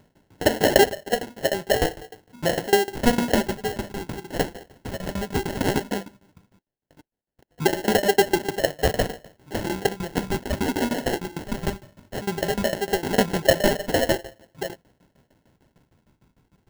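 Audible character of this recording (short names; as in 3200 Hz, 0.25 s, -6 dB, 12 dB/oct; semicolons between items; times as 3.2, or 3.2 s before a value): phasing stages 12, 0.16 Hz, lowest notch 460–1900 Hz; tremolo saw down 6.6 Hz, depth 95%; aliases and images of a low sample rate 1200 Hz, jitter 0%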